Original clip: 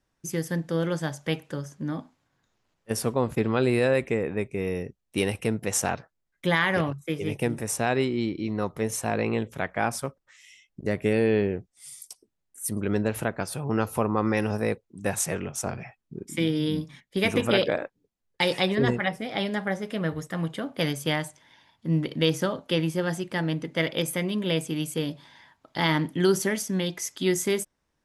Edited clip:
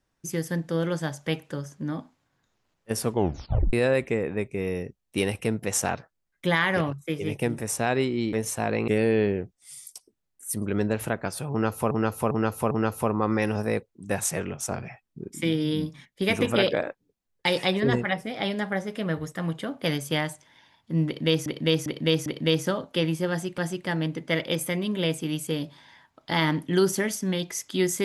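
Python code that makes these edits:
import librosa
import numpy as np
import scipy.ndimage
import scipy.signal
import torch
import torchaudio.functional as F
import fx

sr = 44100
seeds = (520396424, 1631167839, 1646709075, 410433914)

y = fx.edit(x, sr, fx.tape_stop(start_s=3.09, length_s=0.64),
    fx.cut(start_s=8.33, length_s=0.46),
    fx.cut(start_s=9.34, length_s=1.69),
    fx.repeat(start_s=13.66, length_s=0.4, count=4),
    fx.repeat(start_s=22.01, length_s=0.4, count=4),
    fx.repeat(start_s=23.05, length_s=0.28, count=2), tone=tone)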